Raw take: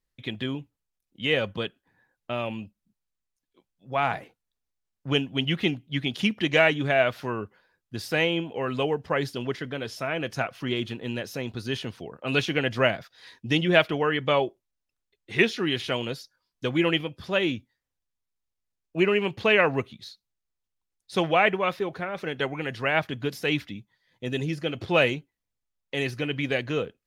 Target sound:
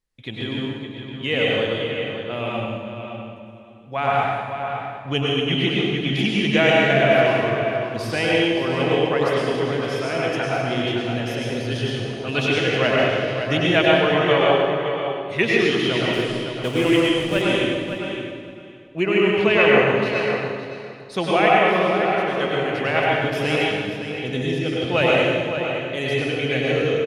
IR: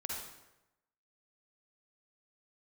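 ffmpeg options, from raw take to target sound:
-filter_complex "[0:a]asettb=1/sr,asplit=3[link_01][link_02][link_03];[link_01]atrim=end=16.134[link_04];[link_02]atrim=start=16.13:end=17.42,asetpts=PTS-STARTPTS,afade=type=in:duration=0.004:curve=qsin,afade=type=out:start_time=1.286:duration=0.004:curve=qsin,acrusher=bits=7:dc=4:mix=0:aa=0.000001[link_05];[link_03]atrim=start=17.416[link_06];[link_04][link_05]acrossfade=duration=0.004:curve1=hsin:curve2=qsin[link_07];[link_07][link_06]acrossfade=duration=0.004:curve1=qsin:curve2=hsin,asplit=2[link_08][link_09];[link_09]adelay=564,lowpass=frequency=4200:poles=1,volume=-7.5dB,asplit=2[link_10][link_11];[link_11]adelay=564,lowpass=frequency=4200:poles=1,volume=0.17,asplit=2[link_12][link_13];[link_13]adelay=564,lowpass=frequency=4200:poles=1,volume=0.17[link_14];[link_08][link_10][link_12][link_14]amix=inputs=4:normalize=0[link_15];[1:a]atrim=start_sample=2205,asetrate=22050,aresample=44100[link_16];[link_15][link_16]afir=irnorm=-1:irlink=0"

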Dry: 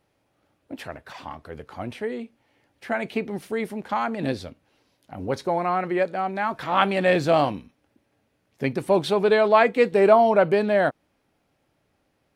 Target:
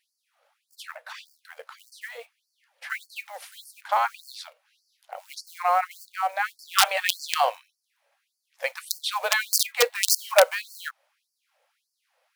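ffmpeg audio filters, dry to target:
ffmpeg -i in.wav -af "aeval=exprs='(mod(2.66*val(0)+1,2)-1)/2.66':channel_layout=same,acrusher=bits=7:mode=log:mix=0:aa=0.000001,afftfilt=real='re*gte(b*sr/1024,460*pow(4400/460,0.5+0.5*sin(2*PI*1.7*pts/sr)))':imag='im*gte(b*sr/1024,460*pow(4400/460,0.5+0.5*sin(2*PI*1.7*pts/sr)))':win_size=1024:overlap=0.75,volume=3dB" out.wav

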